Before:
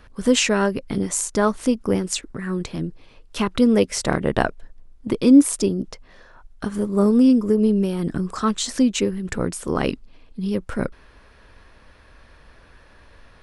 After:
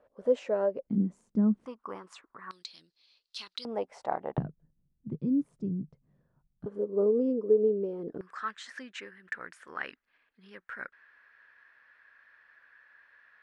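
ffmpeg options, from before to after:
-af "asetnsamples=n=441:p=0,asendcmd='0.87 bandpass f 210;1.66 bandpass f 1100;2.51 bandpass f 4300;3.65 bandpass f 790;4.38 bandpass f 150;6.66 bandpass f 460;8.21 bandpass f 1700',bandpass=f=570:t=q:w=4.9:csg=0"

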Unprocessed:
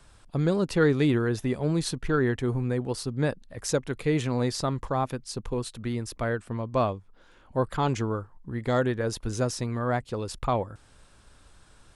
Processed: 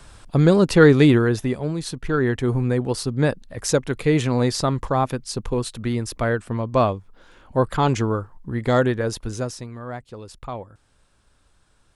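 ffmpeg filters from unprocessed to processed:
-af "volume=7.5,afade=t=out:st=1:d=0.77:silence=0.281838,afade=t=in:st=1.77:d=0.81:silence=0.398107,afade=t=out:st=8.8:d=0.9:silence=0.237137"

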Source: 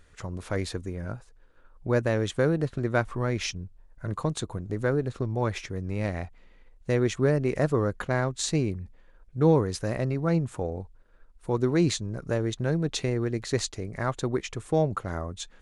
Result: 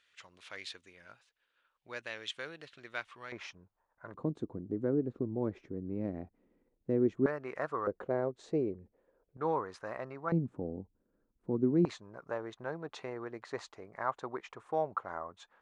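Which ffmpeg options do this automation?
-af "asetnsamples=n=441:p=0,asendcmd='3.32 bandpass f 1000;4.14 bandpass f 290;7.26 bandpass f 1200;7.87 bandpass f 450;9.37 bandpass f 1100;10.32 bandpass f 250;11.85 bandpass f 990',bandpass=f=3000:t=q:w=1.9:csg=0"

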